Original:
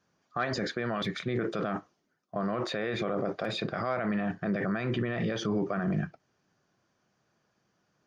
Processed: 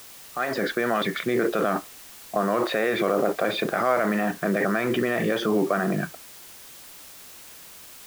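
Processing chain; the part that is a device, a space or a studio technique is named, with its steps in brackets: dictaphone (band-pass 260–3200 Hz; level rider gain up to 11.5 dB; wow and flutter; white noise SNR 19 dB); trim -2 dB

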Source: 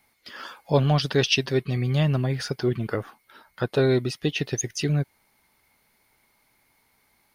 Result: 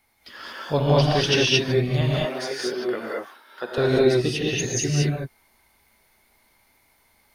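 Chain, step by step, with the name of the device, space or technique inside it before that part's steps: 2.01–3.78 s: Bessel high-pass 380 Hz, order 4; low shelf boost with a cut just above (bass shelf 88 Hz +6 dB; peaking EQ 160 Hz -4.5 dB 0.97 oct); gated-style reverb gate 250 ms rising, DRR -4.5 dB; trim -2 dB

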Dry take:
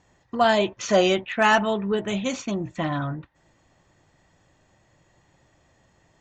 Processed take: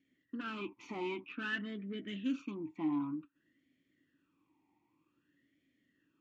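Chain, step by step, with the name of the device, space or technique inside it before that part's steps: talk box (valve stage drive 21 dB, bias 0.45; talking filter i-u 0.53 Hz); trim +1 dB

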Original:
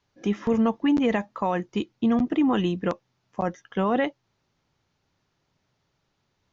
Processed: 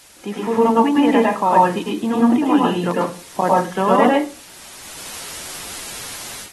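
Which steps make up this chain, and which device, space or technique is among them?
filmed off a television (band-pass 200–6100 Hz; peaking EQ 910 Hz +8 dB 0.42 oct; reverberation RT60 0.35 s, pre-delay 98 ms, DRR -2.5 dB; white noise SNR 23 dB; level rider gain up to 15 dB; trim -1.5 dB; AAC 32 kbps 48 kHz)

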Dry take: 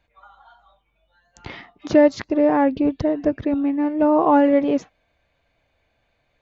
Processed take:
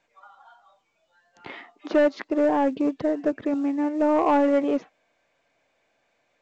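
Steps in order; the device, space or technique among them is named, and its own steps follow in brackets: 1.50–2.30 s: high-pass 230 Hz 24 dB/octave; telephone (band-pass 250–3300 Hz; saturation -11.5 dBFS, distortion -15 dB; trim -1.5 dB; µ-law 128 kbps 16 kHz)

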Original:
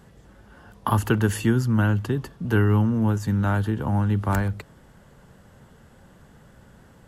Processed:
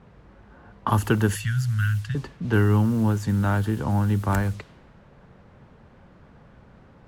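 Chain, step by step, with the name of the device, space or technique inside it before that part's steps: 1.35–2.15 s: elliptic band-stop 150–1500 Hz; cassette deck with a dynamic noise filter (white noise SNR 25 dB; level-controlled noise filter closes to 1.2 kHz, open at -19.5 dBFS)

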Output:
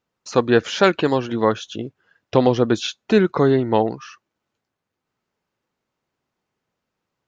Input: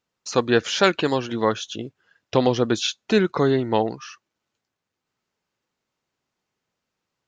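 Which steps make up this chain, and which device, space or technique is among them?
behind a face mask (treble shelf 2.5 kHz -8 dB); trim +3.5 dB

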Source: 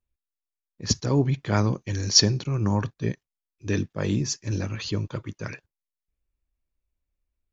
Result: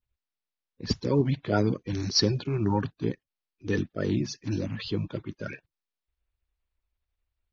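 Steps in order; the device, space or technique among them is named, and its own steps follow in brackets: clip after many re-uploads (low-pass 4.7 kHz 24 dB/octave; coarse spectral quantiser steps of 30 dB); trim -1.5 dB

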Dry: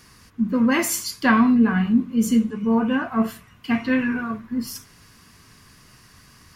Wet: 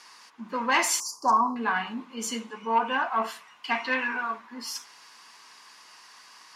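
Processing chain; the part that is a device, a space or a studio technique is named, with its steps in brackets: intercom (band-pass 370–4600 Hz; peaking EQ 890 Hz +12 dB 0.58 oct; saturation -8 dBFS, distortion -19 dB); tilt EQ +3 dB/octave; 1.00–1.56 s: elliptic band-stop 1.1–5.6 kHz, stop band 40 dB; treble shelf 5.1 kHz +5 dB; trim -3 dB

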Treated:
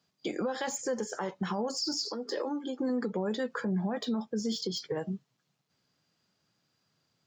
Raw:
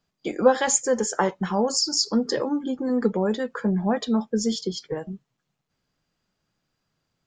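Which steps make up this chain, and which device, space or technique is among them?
broadcast voice chain (high-pass 88 Hz 24 dB/octave; de-esser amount 85%; compression 3:1, threshold -27 dBFS, peak gain reduction 12 dB; peaking EQ 4.7 kHz +5 dB 0.96 oct; peak limiter -23.5 dBFS, peak gain reduction 10 dB); 2.05–2.80 s: high-pass 300 Hz 24 dB/octave

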